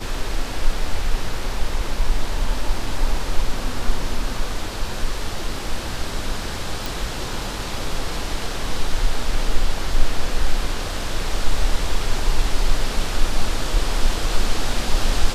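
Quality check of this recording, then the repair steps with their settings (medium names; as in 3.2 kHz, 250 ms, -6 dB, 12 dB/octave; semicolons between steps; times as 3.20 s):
6.86 s: pop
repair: de-click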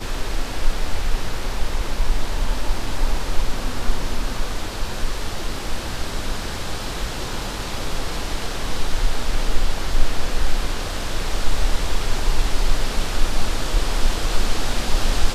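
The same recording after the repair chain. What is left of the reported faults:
nothing left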